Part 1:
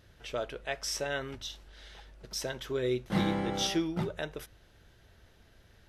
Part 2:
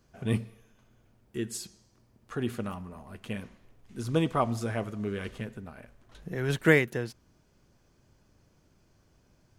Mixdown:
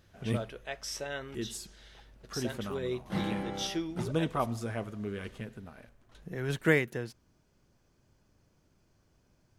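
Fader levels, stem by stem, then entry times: −4.0, −4.0 decibels; 0.00, 0.00 seconds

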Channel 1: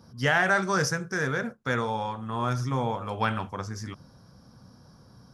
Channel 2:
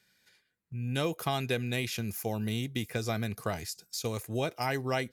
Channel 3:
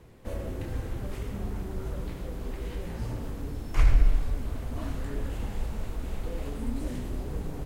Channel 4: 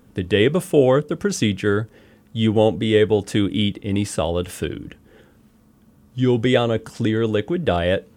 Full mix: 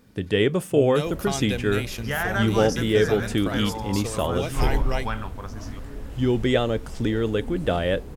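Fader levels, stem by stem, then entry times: −4.0, +1.0, −3.5, −4.0 decibels; 1.85, 0.00, 0.80, 0.00 seconds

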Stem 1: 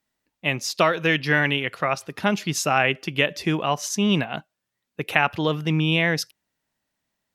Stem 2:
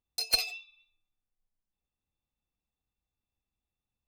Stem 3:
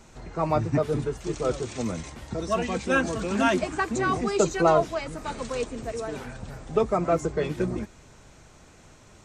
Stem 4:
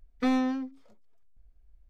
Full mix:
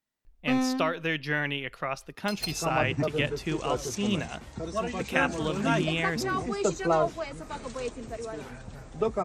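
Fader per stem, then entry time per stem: −8.5, −7.5, −4.5, −1.0 decibels; 0.00, 2.10, 2.25, 0.25 seconds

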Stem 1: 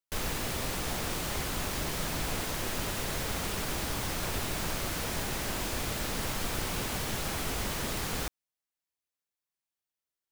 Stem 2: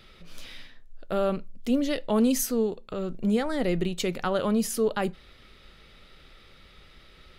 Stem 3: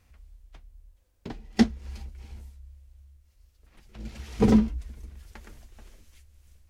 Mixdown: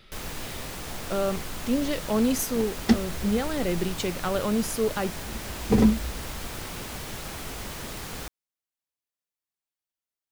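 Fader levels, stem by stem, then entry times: −3.0, −1.0, 0.0 decibels; 0.00, 0.00, 1.30 seconds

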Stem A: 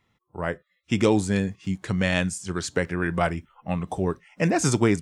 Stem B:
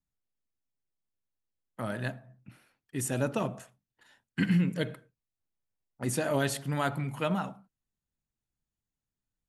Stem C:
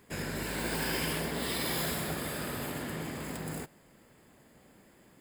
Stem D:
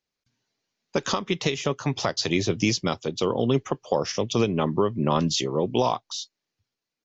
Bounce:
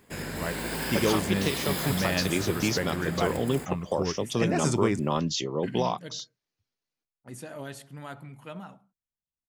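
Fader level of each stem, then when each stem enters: −5.5, −11.0, +1.0, −4.5 decibels; 0.00, 1.25, 0.00, 0.00 seconds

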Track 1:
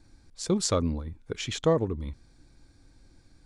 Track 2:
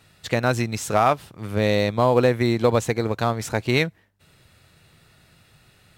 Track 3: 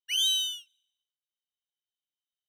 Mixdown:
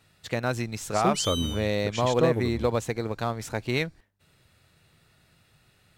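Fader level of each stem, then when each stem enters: −1.0, −6.5, −7.5 decibels; 0.55, 0.00, 1.05 seconds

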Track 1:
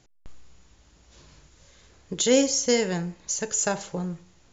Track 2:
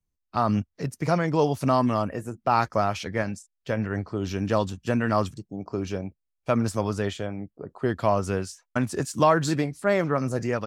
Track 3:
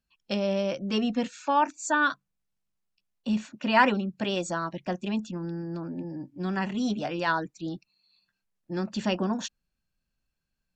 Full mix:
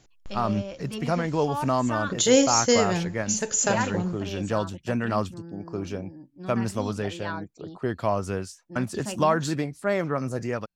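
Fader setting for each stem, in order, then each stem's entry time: +1.5, −2.5, −8.0 decibels; 0.00, 0.00, 0.00 seconds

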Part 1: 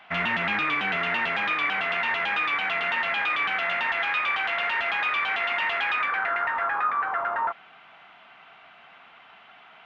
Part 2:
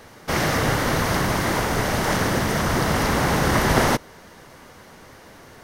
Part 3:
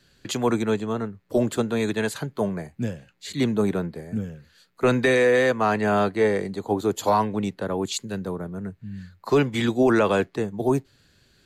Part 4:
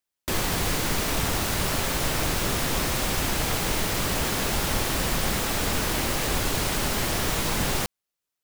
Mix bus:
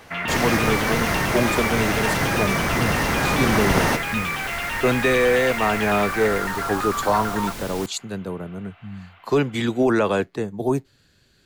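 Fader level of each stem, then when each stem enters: −1.5, −2.0, 0.0, −8.5 decibels; 0.00, 0.00, 0.00, 0.00 seconds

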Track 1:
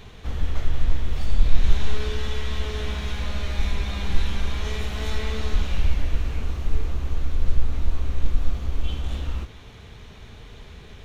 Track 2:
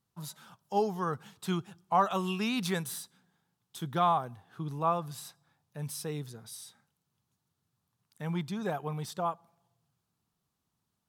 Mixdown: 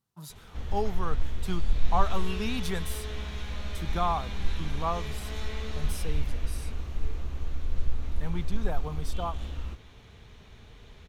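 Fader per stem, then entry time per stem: −7.5, −2.0 decibels; 0.30, 0.00 seconds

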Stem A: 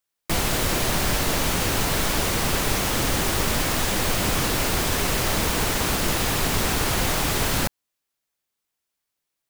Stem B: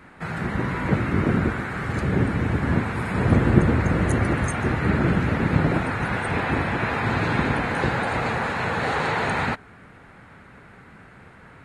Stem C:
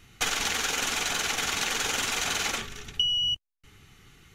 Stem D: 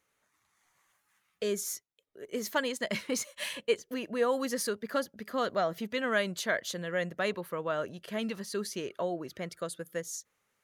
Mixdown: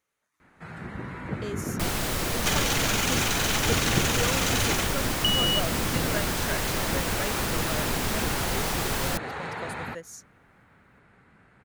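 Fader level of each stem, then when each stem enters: −5.5, −11.0, 0.0, −4.5 decibels; 1.50, 0.40, 2.25, 0.00 seconds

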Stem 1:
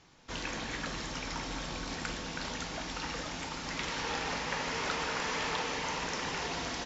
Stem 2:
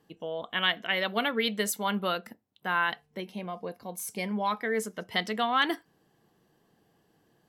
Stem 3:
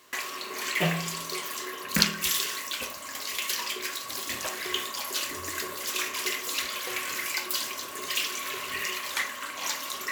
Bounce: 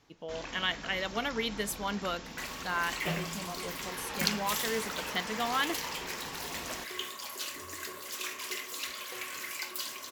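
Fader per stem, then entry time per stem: −6.0, −5.0, −7.5 decibels; 0.00, 0.00, 2.25 seconds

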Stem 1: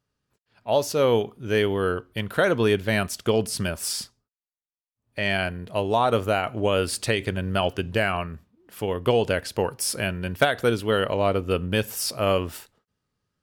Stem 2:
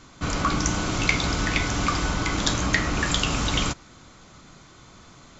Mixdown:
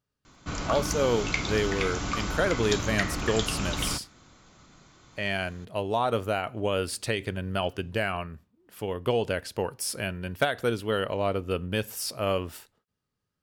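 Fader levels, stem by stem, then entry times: −5.0, −6.5 decibels; 0.00, 0.25 seconds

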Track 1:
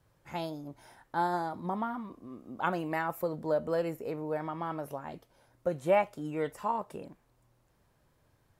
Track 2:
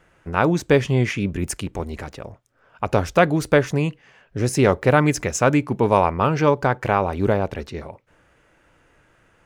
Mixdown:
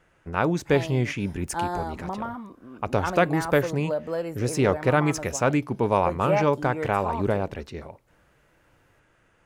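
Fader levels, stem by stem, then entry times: +1.5, −5.0 decibels; 0.40, 0.00 seconds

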